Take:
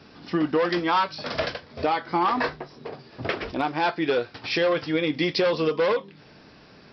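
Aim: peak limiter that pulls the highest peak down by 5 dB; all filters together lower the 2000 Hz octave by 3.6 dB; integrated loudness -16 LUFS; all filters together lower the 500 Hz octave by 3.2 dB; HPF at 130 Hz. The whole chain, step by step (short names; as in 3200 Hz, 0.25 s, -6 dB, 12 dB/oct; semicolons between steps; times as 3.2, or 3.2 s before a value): HPF 130 Hz; bell 500 Hz -3.5 dB; bell 2000 Hz -4.5 dB; gain +13 dB; limiter -5 dBFS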